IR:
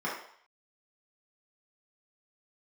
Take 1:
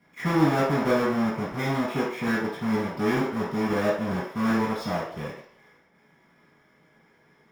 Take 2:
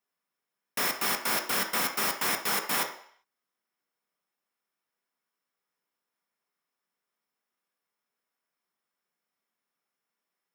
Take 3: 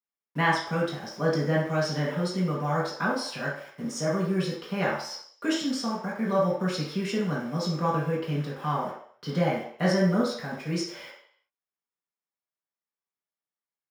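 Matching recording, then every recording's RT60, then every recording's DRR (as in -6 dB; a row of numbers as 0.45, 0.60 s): 3; 0.60, 0.60, 0.60 s; -10.5, 3.5, -6.5 dB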